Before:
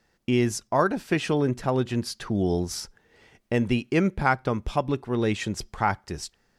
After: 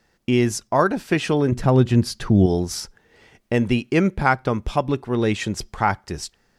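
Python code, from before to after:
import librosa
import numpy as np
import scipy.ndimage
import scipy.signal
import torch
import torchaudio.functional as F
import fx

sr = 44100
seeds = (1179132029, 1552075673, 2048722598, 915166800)

y = fx.low_shelf(x, sr, hz=240.0, db=10.5, at=(1.52, 2.46))
y = F.gain(torch.from_numpy(y), 4.0).numpy()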